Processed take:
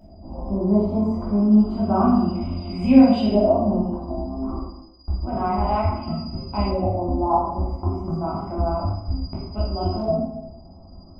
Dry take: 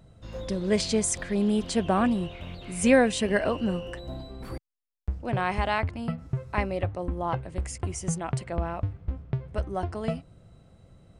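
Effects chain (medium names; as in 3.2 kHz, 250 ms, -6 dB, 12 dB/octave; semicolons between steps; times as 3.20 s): tilt shelf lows +7.5 dB, about 1.3 kHz; in parallel at 0 dB: compression, threshold -29 dBFS, peak gain reduction 19 dB; on the sum: static phaser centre 470 Hz, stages 6; whistle 4.9 kHz -29 dBFS; LFO low-pass saw up 0.3 Hz 680–3000 Hz; wow and flutter 21 cents; reverberation RT60 0.85 s, pre-delay 12 ms, DRR -6 dB; trim -8 dB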